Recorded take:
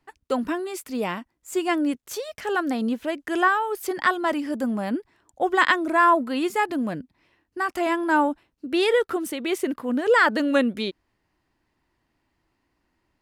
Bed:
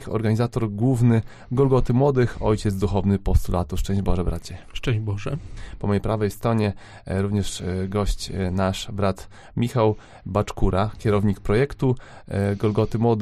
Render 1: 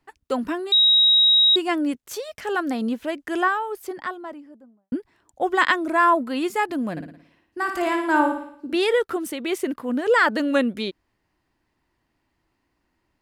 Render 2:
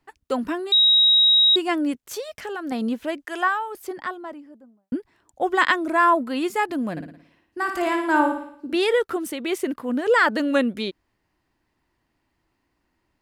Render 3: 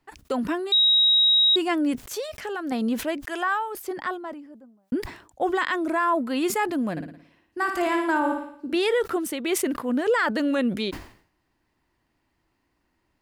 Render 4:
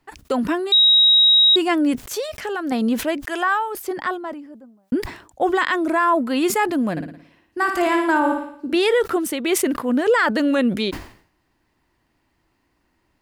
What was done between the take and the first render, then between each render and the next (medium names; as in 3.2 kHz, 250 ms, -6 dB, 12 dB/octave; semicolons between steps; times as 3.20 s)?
0.72–1.56 s: bleep 3.81 kHz -12.5 dBFS; 3.16–4.92 s: studio fade out; 6.91–8.76 s: flutter echo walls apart 9.7 m, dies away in 0.61 s
2.32–2.72 s: compression 5:1, threshold -27 dBFS; 3.25–3.75 s: high-pass 540 Hz
peak limiter -15 dBFS, peak gain reduction 10 dB; decay stretcher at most 110 dB/s
trim +5 dB